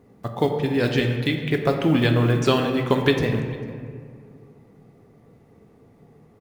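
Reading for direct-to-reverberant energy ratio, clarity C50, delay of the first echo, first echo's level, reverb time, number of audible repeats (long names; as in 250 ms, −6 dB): 3.0 dB, 5.0 dB, 448 ms, −23.0 dB, 2.2 s, 1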